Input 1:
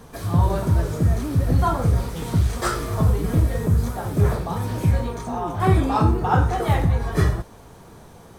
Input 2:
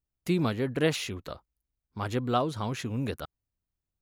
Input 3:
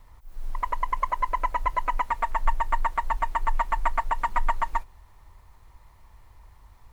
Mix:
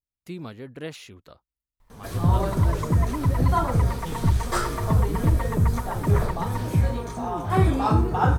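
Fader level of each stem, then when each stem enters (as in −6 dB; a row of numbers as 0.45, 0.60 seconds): −2.0, −9.5, −8.5 decibels; 1.90, 0.00, 1.80 seconds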